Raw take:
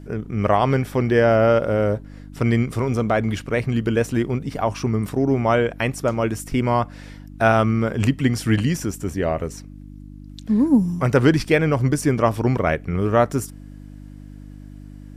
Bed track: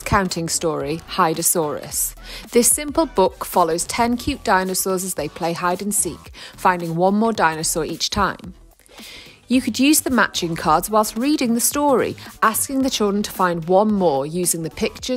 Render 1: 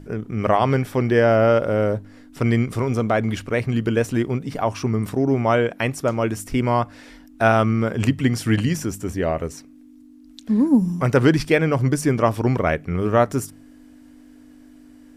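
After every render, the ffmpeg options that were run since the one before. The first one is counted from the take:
-af "bandreject=f=50:t=h:w=4,bandreject=f=100:t=h:w=4,bandreject=f=150:t=h:w=4,bandreject=f=200:t=h:w=4"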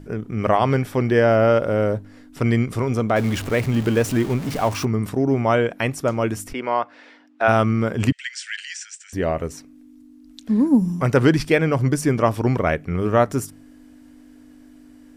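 -filter_complex "[0:a]asettb=1/sr,asplit=3[a][b][c];[a]atrim=end=3.164[d];[b]atrim=start=3.16:end=4.85,asetpts=PTS-STARTPTS,afade=t=in:d=0.004:c=qsin,afade=t=out:st=1.686:d=0.004:c=qsin,aeval=exprs='val(0)+0.5*0.0422*sgn(val(0))':c=same[e];[c]atrim=start=4.846[f];[d][e]acrossfade=d=0.004:c1=hsin:c2=qsin[g];[g][f]acrossfade=d=0.004:c1=qsin:c2=hsin,asplit=3[h][i][j];[h]afade=t=out:st=6.52:d=0.02[k];[i]highpass=430,lowpass=3.5k,afade=t=in:st=6.52:d=0.02,afade=t=out:st=7.47:d=0.02[l];[j]afade=t=in:st=7.47:d=0.02[m];[k][l][m]amix=inputs=3:normalize=0,asettb=1/sr,asplit=3[n][o][p];[n]atrim=end=8.124[q];[o]atrim=start=8.12:end=9.13,asetpts=PTS-STARTPTS,afade=t=in:d=0.004:c=qsin,afade=t=out:st=1.006:d=0.004:c=qsin,asuperpass=centerf=3800:order=20:qfactor=0.53[r];[p]atrim=start=9.126[s];[q][r]acrossfade=d=0.004:c1=hsin:c2=qsin[t];[t][s]acrossfade=d=0.004:c1=qsin:c2=hsin"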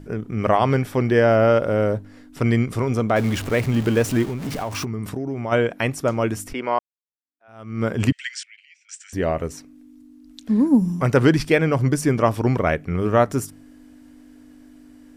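-filter_complex "[0:a]asplit=3[a][b][c];[a]afade=t=out:st=4.24:d=0.02[d];[b]acompressor=threshold=-23dB:ratio=6:attack=3.2:release=140:knee=1:detection=peak,afade=t=in:st=4.24:d=0.02,afade=t=out:st=5.51:d=0.02[e];[c]afade=t=in:st=5.51:d=0.02[f];[d][e][f]amix=inputs=3:normalize=0,asettb=1/sr,asplit=3[g][h][i];[g]atrim=end=8.434[j];[h]atrim=start=8.43:end=8.89,asetpts=PTS-STARTPTS,afade=t=in:d=0.004:c=qsin,afade=t=out:st=0.456:d=0.004:c=qsin,asplit=3[k][l][m];[k]bandpass=f=300:t=q:w=8,volume=0dB[n];[l]bandpass=f=870:t=q:w=8,volume=-6dB[o];[m]bandpass=f=2.24k:t=q:w=8,volume=-9dB[p];[n][o][p]amix=inputs=3:normalize=0[q];[i]atrim=start=8.886[r];[j][q]acrossfade=d=0.004:c1=hsin:c2=qsin[s];[s][r]acrossfade=d=0.004:c1=qsin:c2=hsin,asplit=2[t][u];[t]atrim=end=6.79,asetpts=PTS-STARTPTS,afade=t=out:st=6.786:d=0.004:c=hsin[v];[u]atrim=start=6.79,asetpts=PTS-STARTPTS,afade=t=in:d=1.05:c=exp[w];[v][w]concat=n=2:v=0:a=1"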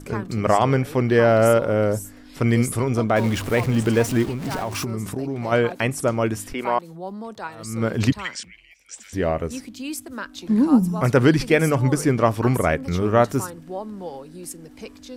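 -filter_complex "[1:a]volume=-16.5dB[a];[0:a][a]amix=inputs=2:normalize=0"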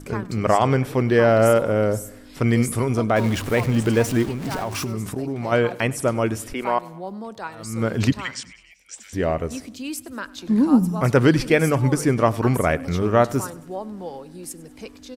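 -af "aecho=1:1:99|198|297|396:0.0891|0.0463|0.0241|0.0125"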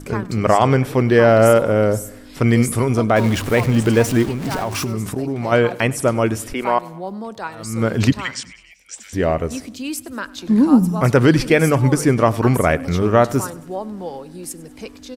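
-af "volume=4dB,alimiter=limit=-2dB:level=0:latency=1"

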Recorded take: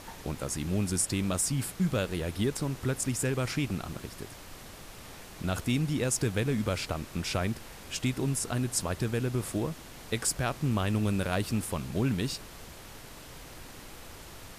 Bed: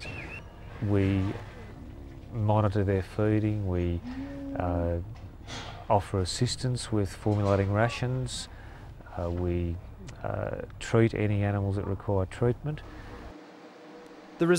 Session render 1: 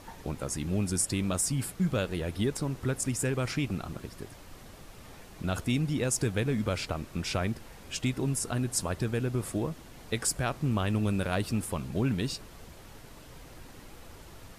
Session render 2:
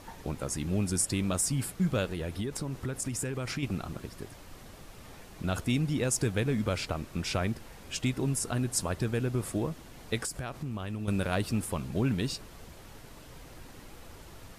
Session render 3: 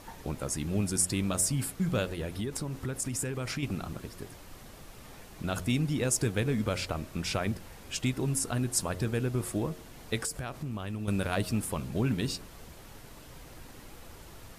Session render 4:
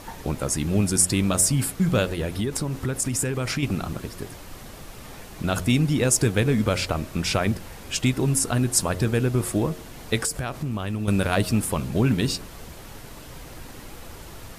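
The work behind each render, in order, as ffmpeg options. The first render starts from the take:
-af "afftdn=nr=6:nf=-47"
-filter_complex "[0:a]asettb=1/sr,asplit=3[a][b][c];[a]atrim=end=2.064[d];[b]atrim=start=2.06:end=3.63,asetpts=PTS-STARTPTS,afade=t=in:d=0.004:c=qsin,afade=t=out:st=1.566:d=0.004:c=qsin,acompressor=threshold=-29dB:ratio=5:attack=3.2:release=140:knee=1:detection=peak[e];[c]atrim=start=3.626[f];[d][e]acrossfade=d=0.004:c1=hsin:c2=qsin[g];[g][f]acrossfade=d=0.004:c1=qsin:c2=hsin,asettb=1/sr,asplit=3[h][i][j];[h]atrim=end=10.254[k];[i]atrim=start=10.25:end=11.08,asetpts=PTS-STARTPTS,afade=t=in:d=0.004:c=qsin,afade=t=out:st=0.826:d=0.004:c=qsin,acompressor=threshold=-32dB:ratio=5:attack=3.2:release=140:knee=1:detection=peak[l];[j]atrim=start=11.076[m];[k][l]acrossfade=d=0.004:c1=hsin:c2=qsin[n];[n][m]acrossfade=d=0.004:c1=qsin:c2=hsin"
-af "highshelf=f=11k:g=4.5,bandreject=f=90.37:t=h:w=4,bandreject=f=180.74:t=h:w=4,bandreject=f=271.11:t=h:w=4,bandreject=f=361.48:t=h:w=4,bandreject=f=451.85:t=h:w=4,bandreject=f=542.22:t=h:w=4,bandreject=f=632.59:t=h:w=4"
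-af "volume=8dB"

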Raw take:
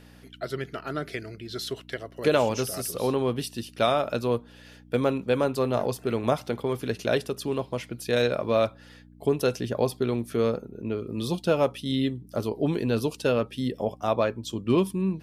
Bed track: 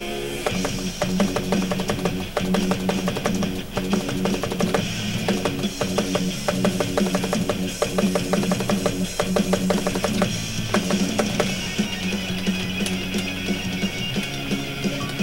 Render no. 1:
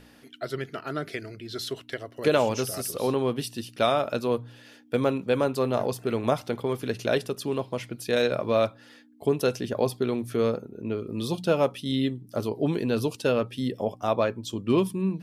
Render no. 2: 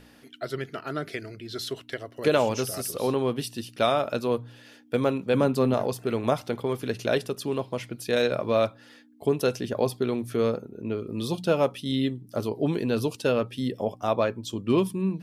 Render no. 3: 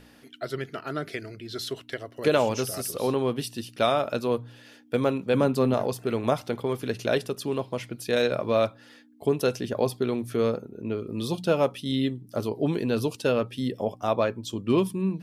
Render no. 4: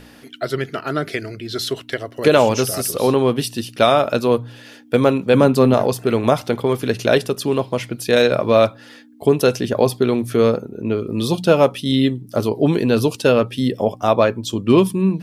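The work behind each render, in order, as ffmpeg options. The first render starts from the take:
-af "bandreject=f=60:t=h:w=4,bandreject=f=120:t=h:w=4,bandreject=f=180:t=h:w=4"
-filter_complex "[0:a]asettb=1/sr,asplit=3[a][b][c];[a]atrim=end=5.344[d];[b]atrim=start=5.34:end=5.74,asetpts=PTS-STARTPTS,afade=t=in:d=0.004:c=qsin,afade=t=out:st=0.396:d=0.004:c=qsin,equalizer=f=190:w=1.5:g=11.5[e];[c]atrim=start=5.736[f];[d][e]acrossfade=d=0.004:c1=hsin:c2=qsin[g];[g][f]acrossfade=d=0.004:c1=qsin:c2=hsin"
-af anull
-af "volume=9.5dB,alimiter=limit=-2dB:level=0:latency=1"

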